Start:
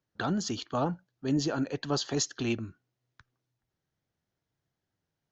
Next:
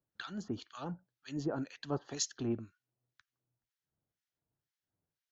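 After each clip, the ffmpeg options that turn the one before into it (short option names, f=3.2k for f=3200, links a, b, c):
-filter_complex "[0:a]acrossover=split=1400[a][b];[a]aeval=exprs='val(0)*(1-1/2+1/2*cos(2*PI*2*n/s))':c=same[c];[b]aeval=exprs='val(0)*(1-1/2-1/2*cos(2*PI*2*n/s))':c=same[d];[c][d]amix=inputs=2:normalize=0,volume=-3.5dB"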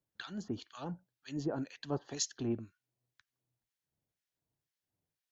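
-af "equalizer=f=1.3k:t=o:w=0.36:g=-4.5"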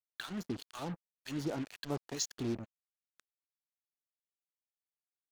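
-af "acompressor=threshold=-46dB:ratio=1.5,acrusher=bits=7:mix=0:aa=0.5,volume=4.5dB"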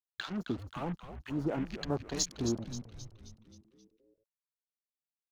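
-filter_complex "[0:a]afwtdn=0.00316,asplit=2[a][b];[b]asplit=6[c][d][e][f][g][h];[c]adelay=265,afreqshift=-110,volume=-10dB[i];[d]adelay=530,afreqshift=-220,volume=-15.5dB[j];[e]adelay=795,afreqshift=-330,volume=-21dB[k];[f]adelay=1060,afreqshift=-440,volume=-26.5dB[l];[g]adelay=1325,afreqshift=-550,volume=-32.1dB[m];[h]adelay=1590,afreqshift=-660,volume=-37.6dB[n];[i][j][k][l][m][n]amix=inputs=6:normalize=0[o];[a][o]amix=inputs=2:normalize=0,volume=3.5dB"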